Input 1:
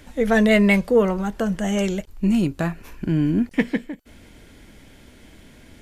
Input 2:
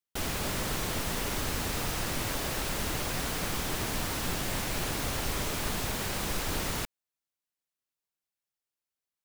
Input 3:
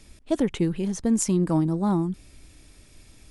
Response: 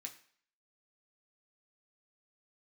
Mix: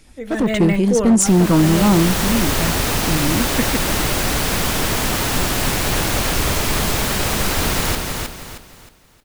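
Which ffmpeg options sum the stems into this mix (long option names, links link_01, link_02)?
-filter_complex "[0:a]deesser=0.75,volume=-12.5dB,asplit=2[link_01][link_02];[link_02]volume=-3dB[link_03];[1:a]dynaudnorm=framelen=150:gausssize=7:maxgain=7dB,adelay=1100,volume=-5.5dB,asplit=2[link_04][link_05];[link_05]volume=-4dB[link_06];[2:a]volume=0.5dB[link_07];[3:a]atrim=start_sample=2205[link_08];[link_03][link_08]afir=irnorm=-1:irlink=0[link_09];[link_06]aecho=0:1:313|626|939|1252|1565:1|0.34|0.116|0.0393|0.0134[link_10];[link_01][link_04][link_07][link_09][link_10]amix=inputs=5:normalize=0,asoftclip=type=hard:threshold=-18.5dB,dynaudnorm=framelen=300:gausssize=3:maxgain=10dB"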